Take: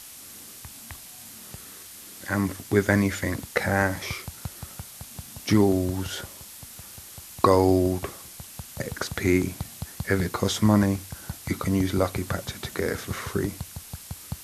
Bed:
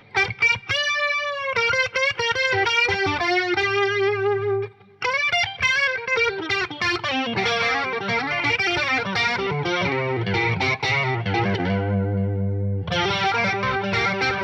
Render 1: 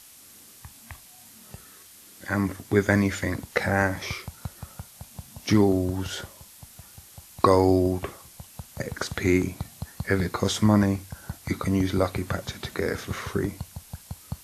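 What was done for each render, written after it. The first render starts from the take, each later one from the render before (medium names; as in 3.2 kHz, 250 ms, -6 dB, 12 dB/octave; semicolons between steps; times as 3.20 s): noise print and reduce 6 dB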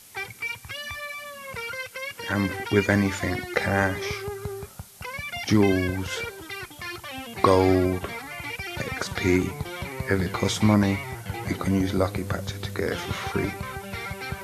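add bed -13 dB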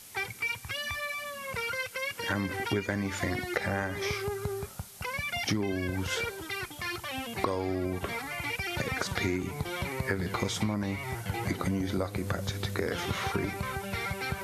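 compression 10:1, threshold -26 dBFS, peak gain reduction 14 dB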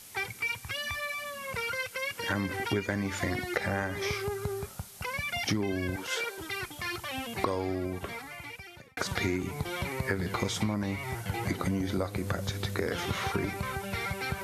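5.96–6.38 s: high-pass 390 Hz; 7.59–8.97 s: fade out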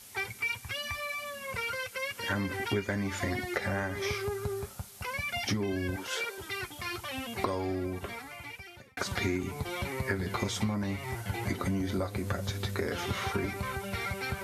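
comb of notches 160 Hz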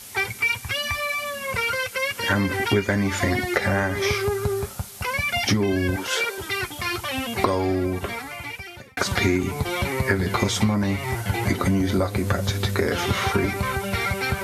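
trim +10 dB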